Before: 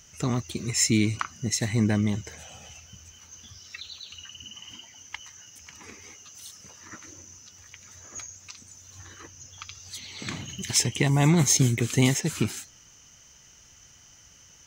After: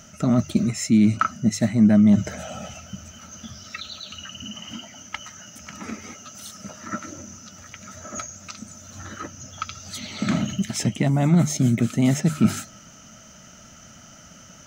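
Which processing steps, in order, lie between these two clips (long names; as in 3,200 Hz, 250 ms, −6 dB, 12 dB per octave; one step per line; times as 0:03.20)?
mains-hum notches 50/100/150 Hz
reversed playback
downward compressor 4 to 1, threshold −32 dBFS, peak gain reduction 14 dB
reversed playback
hollow resonant body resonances 210/610/1,300 Hz, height 17 dB, ringing for 30 ms
level +4 dB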